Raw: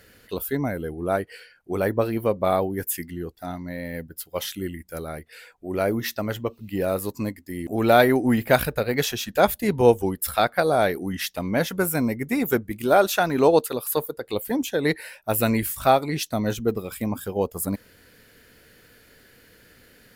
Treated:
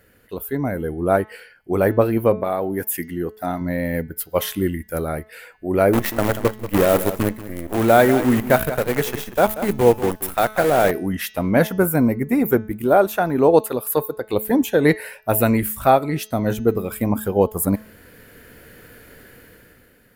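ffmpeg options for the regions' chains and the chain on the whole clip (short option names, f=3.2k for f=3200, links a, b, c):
-filter_complex "[0:a]asettb=1/sr,asplit=3[a][b][c];[a]atrim=end=2.404[d];[b]atrim=start=2.4:end=3.61,asetpts=PTS-STARTPTS,afade=t=in:d=0.004:c=qsin,afade=t=out:st=1.206:d=0.004:c=qsin,lowshelf=f=130:g=-11.5,acompressor=threshold=-25dB:ratio=3:attack=3.2:release=140:knee=1:detection=peak[e];[c]atrim=start=3.606[f];[d][e]acrossfade=d=0.004:c1=hsin:c2=qsin[g];[g][f]acrossfade=d=0.004:c1=qsin:c2=hsin,asettb=1/sr,asplit=3[h][i][j];[h]atrim=end=5.934[k];[i]atrim=start=5.93:end=10.91,asetpts=PTS-STARTPTS,afade=t=in:d=0.004:c=qsin,afade=t=out:st=4.976:d=0.004:c=qsin,acrusher=bits=5:dc=4:mix=0:aa=0.000001,aecho=1:1:186:0.237,atrim=end_sample=219618[l];[j]atrim=start=10.906[m];[k][l]acrossfade=d=0.004:c1=hsin:c2=qsin[n];[n][m]acrossfade=d=0.004:c1=qsin:c2=hsin,asettb=1/sr,asplit=3[o][p][q];[o]atrim=end=11.674[r];[p]atrim=start=11.67:end=13.54,asetpts=PTS-STARTPTS,afade=t=in:d=0.004:c=qsin,afade=t=out:st=1.866:d=0.004:c=qsin,lowpass=f=1k:p=1,aemphasis=mode=production:type=75fm[s];[q]atrim=start=13.536[t];[r][s]acrossfade=d=0.004:c1=hsin:c2=qsin[u];[u][t]acrossfade=d=0.004:c1=qsin:c2=hsin,equalizer=f=4.8k:t=o:w=1.6:g=-10,bandreject=f=215.7:t=h:w=4,bandreject=f=431.4:t=h:w=4,bandreject=f=647.1:t=h:w=4,bandreject=f=862.8:t=h:w=4,bandreject=f=1.0785k:t=h:w=4,bandreject=f=1.2942k:t=h:w=4,bandreject=f=1.5099k:t=h:w=4,bandreject=f=1.7256k:t=h:w=4,bandreject=f=1.9413k:t=h:w=4,bandreject=f=2.157k:t=h:w=4,bandreject=f=2.3727k:t=h:w=4,bandreject=f=2.5884k:t=h:w=4,bandreject=f=2.8041k:t=h:w=4,bandreject=f=3.0198k:t=h:w=4,bandreject=f=3.2355k:t=h:w=4,bandreject=f=3.4512k:t=h:w=4,bandreject=f=3.6669k:t=h:w=4,bandreject=f=3.8826k:t=h:w=4,bandreject=f=4.0983k:t=h:w=4,bandreject=f=4.314k:t=h:w=4,bandreject=f=4.5297k:t=h:w=4,bandreject=f=4.7454k:t=h:w=4,bandreject=f=4.9611k:t=h:w=4,bandreject=f=5.1768k:t=h:w=4,bandreject=f=5.3925k:t=h:w=4,bandreject=f=5.6082k:t=h:w=4,bandreject=f=5.8239k:t=h:w=4,bandreject=f=6.0396k:t=h:w=4,bandreject=f=6.2553k:t=h:w=4,bandreject=f=6.471k:t=h:w=4,bandreject=f=6.6867k:t=h:w=4,dynaudnorm=f=160:g=9:m=11.5dB,volume=-1dB"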